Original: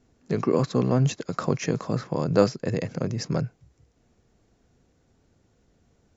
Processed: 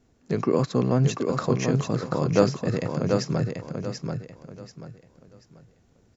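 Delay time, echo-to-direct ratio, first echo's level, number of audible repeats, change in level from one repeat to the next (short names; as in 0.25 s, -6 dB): 0.736 s, -4.5 dB, -5.0 dB, 3, -10.5 dB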